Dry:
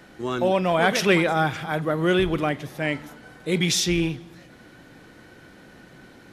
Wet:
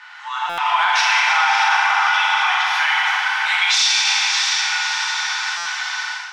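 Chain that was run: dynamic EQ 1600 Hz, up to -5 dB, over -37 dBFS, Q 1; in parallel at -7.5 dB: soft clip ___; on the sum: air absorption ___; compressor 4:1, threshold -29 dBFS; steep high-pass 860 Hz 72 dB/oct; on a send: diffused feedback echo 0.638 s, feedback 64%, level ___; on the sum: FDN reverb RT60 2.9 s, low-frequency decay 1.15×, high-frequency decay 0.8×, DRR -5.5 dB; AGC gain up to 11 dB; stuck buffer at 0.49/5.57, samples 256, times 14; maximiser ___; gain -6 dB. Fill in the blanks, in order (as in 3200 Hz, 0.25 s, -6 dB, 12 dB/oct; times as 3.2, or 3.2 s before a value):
-20.5 dBFS, 150 m, -8 dB, +14 dB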